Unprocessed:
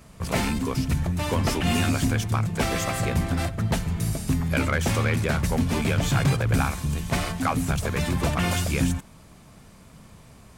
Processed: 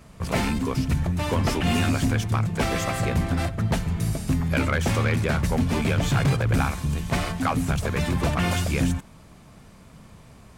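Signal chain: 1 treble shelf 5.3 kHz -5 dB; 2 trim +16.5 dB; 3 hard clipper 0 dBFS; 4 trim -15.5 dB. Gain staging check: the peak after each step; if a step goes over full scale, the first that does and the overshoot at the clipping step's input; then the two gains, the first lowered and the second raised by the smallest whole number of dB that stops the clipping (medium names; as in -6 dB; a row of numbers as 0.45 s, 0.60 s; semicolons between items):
-12.5 dBFS, +4.0 dBFS, 0.0 dBFS, -15.5 dBFS; step 2, 4.0 dB; step 2 +12.5 dB, step 4 -11.5 dB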